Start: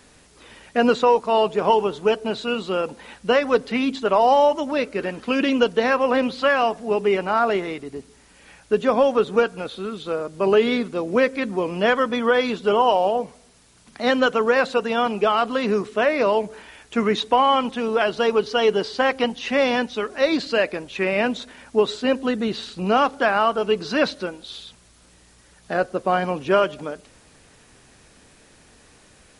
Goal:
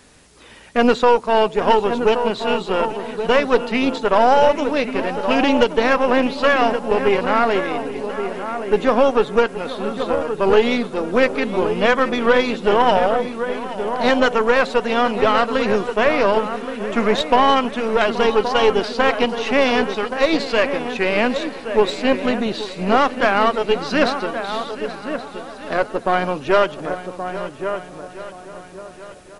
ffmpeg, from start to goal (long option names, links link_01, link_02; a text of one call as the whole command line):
ffmpeg -i in.wav -filter_complex "[0:a]asplit=2[link_01][link_02];[link_02]adelay=1124,lowpass=frequency=1600:poles=1,volume=-8dB,asplit=2[link_03][link_04];[link_04]adelay=1124,lowpass=frequency=1600:poles=1,volume=0.26,asplit=2[link_05][link_06];[link_06]adelay=1124,lowpass=frequency=1600:poles=1,volume=0.26[link_07];[link_03][link_05][link_07]amix=inputs=3:normalize=0[link_08];[link_01][link_08]amix=inputs=2:normalize=0,aeval=exprs='0.668*(cos(1*acos(clip(val(0)/0.668,-1,1)))-cos(1*PI/2))+0.0596*(cos(6*acos(clip(val(0)/0.668,-1,1)))-cos(6*PI/2))':channel_layout=same,asplit=2[link_09][link_10];[link_10]aecho=0:1:827|1654|2481|3308|4135|4962:0.178|0.105|0.0619|0.0365|0.0215|0.0127[link_11];[link_09][link_11]amix=inputs=2:normalize=0,volume=2dB" out.wav